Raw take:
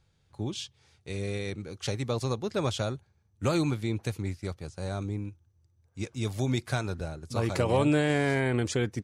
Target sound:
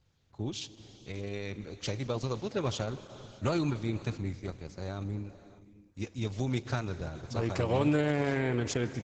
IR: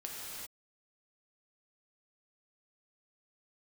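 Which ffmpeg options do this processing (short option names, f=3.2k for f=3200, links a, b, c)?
-filter_complex "[0:a]asplit=2[a][b];[1:a]atrim=start_sample=2205,asetrate=28224,aresample=44100[c];[b][c]afir=irnorm=-1:irlink=0,volume=-15.5dB[d];[a][d]amix=inputs=2:normalize=0,aresample=16000,aresample=44100,volume=-3dB" -ar 48000 -c:a libopus -b:a 10k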